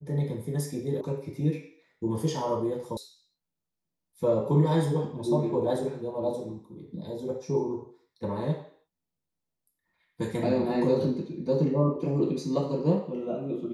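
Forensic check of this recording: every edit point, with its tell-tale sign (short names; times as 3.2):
1.01 sound cut off
2.97 sound cut off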